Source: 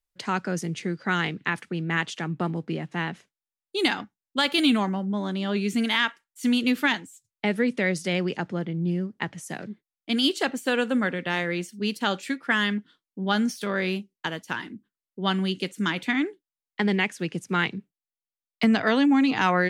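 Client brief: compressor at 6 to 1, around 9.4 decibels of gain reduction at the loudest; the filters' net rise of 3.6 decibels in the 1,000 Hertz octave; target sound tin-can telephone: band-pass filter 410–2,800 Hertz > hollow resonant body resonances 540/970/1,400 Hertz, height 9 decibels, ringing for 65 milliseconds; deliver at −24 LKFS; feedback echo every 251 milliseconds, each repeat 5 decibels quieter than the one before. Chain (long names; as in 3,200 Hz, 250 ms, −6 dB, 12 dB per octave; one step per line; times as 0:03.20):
parametric band 1,000 Hz +5 dB
downward compressor 6 to 1, threshold −26 dBFS
band-pass filter 410–2,800 Hz
repeating echo 251 ms, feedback 56%, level −5 dB
hollow resonant body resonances 540/970/1,400 Hz, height 9 dB, ringing for 65 ms
level +8 dB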